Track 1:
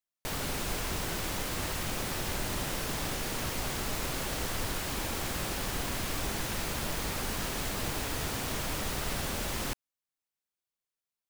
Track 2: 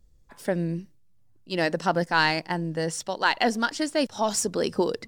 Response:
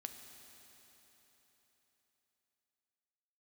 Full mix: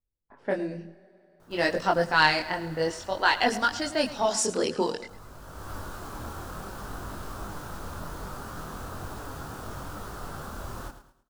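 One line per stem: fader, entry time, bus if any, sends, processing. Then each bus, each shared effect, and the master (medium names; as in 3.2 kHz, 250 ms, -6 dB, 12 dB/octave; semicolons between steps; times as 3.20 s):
-1.5 dB, 1.15 s, muted 4.16–4.98 s, no send, echo send -11 dB, resonant high shelf 1.7 kHz -7 dB, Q 3; auto duck -22 dB, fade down 1.60 s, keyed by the second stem
+2.0 dB, 0.00 s, send -8 dB, echo send -14 dB, gate with hold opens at -43 dBFS; level-controlled noise filter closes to 1.1 kHz, open at -20 dBFS; bass shelf 210 Hz -10.5 dB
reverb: on, RT60 4.0 s, pre-delay 4 ms
echo: feedback delay 108 ms, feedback 33%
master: peaking EQ 90 Hz +4 dB 0.77 oct; chorus voices 2, 0.56 Hz, delay 23 ms, depth 3.8 ms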